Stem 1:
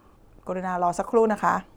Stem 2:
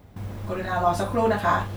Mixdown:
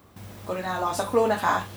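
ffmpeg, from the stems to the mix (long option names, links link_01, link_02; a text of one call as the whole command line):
ffmpeg -i stem1.wav -i stem2.wav -filter_complex "[0:a]volume=-2dB[link_01];[1:a]highshelf=frequency=2500:gain=10.5,volume=-5.5dB[link_02];[link_01][link_02]amix=inputs=2:normalize=0,highpass=frequency=120:poles=1" out.wav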